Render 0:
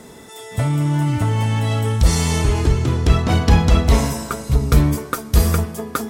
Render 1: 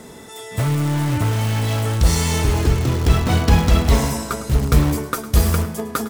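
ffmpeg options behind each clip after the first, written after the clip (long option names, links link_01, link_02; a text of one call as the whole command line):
ffmpeg -i in.wav -filter_complex "[0:a]asplit=2[link_01][link_02];[link_02]aeval=exprs='(mod(5.96*val(0)+1,2)-1)/5.96':channel_layout=same,volume=-10.5dB[link_03];[link_01][link_03]amix=inputs=2:normalize=0,aecho=1:1:106:0.168,volume=-1dB" out.wav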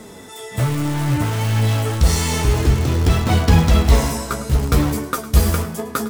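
ffmpeg -i in.wav -af "flanger=delay=9:depth=8.5:regen=39:speed=0.61:shape=triangular,volume=4.5dB" out.wav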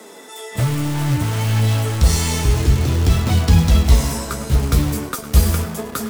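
ffmpeg -i in.wav -filter_complex "[0:a]acrossover=split=220|3000[link_01][link_02][link_03];[link_02]acompressor=threshold=-26dB:ratio=6[link_04];[link_01][link_04][link_03]amix=inputs=3:normalize=0,acrossover=split=250|1600|3400[link_05][link_06][link_07][link_08];[link_05]acrusher=bits=5:mix=0:aa=0.000001[link_09];[link_09][link_06][link_07][link_08]amix=inputs=4:normalize=0,volume=1dB" out.wav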